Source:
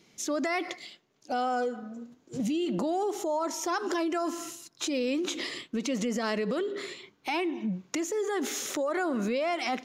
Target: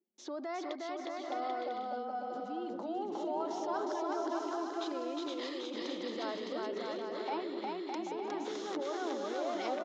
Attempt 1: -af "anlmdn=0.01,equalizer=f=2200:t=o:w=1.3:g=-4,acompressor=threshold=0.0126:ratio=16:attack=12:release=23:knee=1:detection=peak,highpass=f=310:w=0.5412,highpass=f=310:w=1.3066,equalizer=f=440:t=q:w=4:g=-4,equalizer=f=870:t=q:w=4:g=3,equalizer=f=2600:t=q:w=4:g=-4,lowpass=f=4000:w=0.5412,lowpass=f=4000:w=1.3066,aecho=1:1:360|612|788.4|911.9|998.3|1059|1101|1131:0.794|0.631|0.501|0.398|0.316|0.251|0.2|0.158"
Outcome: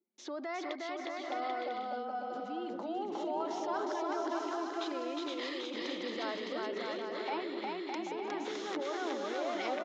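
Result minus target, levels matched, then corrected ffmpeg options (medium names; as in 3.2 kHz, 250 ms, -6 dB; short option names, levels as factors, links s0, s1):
2 kHz band +4.0 dB
-af "anlmdn=0.01,equalizer=f=2200:t=o:w=1.3:g=-11,acompressor=threshold=0.0126:ratio=16:attack=12:release=23:knee=1:detection=peak,highpass=f=310:w=0.5412,highpass=f=310:w=1.3066,equalizer=f=440:t=q:w=4:g=-4,equalizer=f=870:t=q:w=4:g=3,equalizer=f=2600:t=q:w=4:g=-4,lowpass=f=4000:w=0.5412,lowpass=f=4000:w=1.3066,aecho=1:1:360|612|788.4|911.9|998.3|1059|1101|1131:0.794|0.631|0.501|0.398|0.316|0.251|0.2|0.158"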